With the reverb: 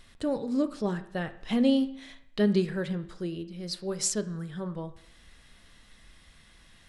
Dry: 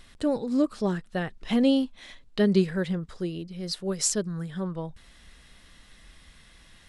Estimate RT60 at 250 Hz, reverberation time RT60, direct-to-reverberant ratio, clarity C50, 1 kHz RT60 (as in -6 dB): 0.65 s, 0.65 s, 9.5 dB, 14.0 dB, 0.65 s